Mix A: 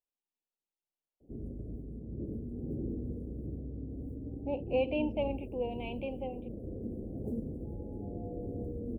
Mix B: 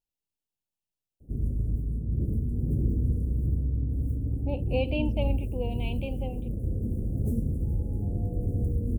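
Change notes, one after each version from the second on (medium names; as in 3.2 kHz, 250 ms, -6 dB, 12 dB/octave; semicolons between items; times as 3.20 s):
master: remove three-band isolator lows -16 dB, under 240 Hz, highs -20 dB, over 2.8 kHz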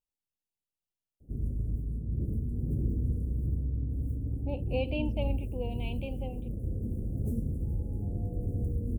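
speech -3.5 dB; background -4.0 dB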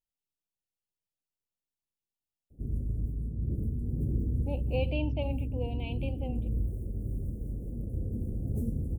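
background: entry +1.30 s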